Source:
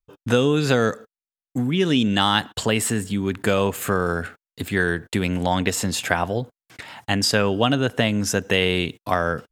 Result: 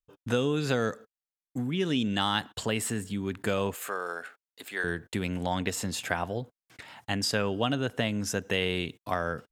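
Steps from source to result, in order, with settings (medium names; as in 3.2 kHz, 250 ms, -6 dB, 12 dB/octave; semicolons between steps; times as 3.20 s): 3.75–4.84 s: high-pass 540 Hz 12 dB/octave; trim -8.5 dB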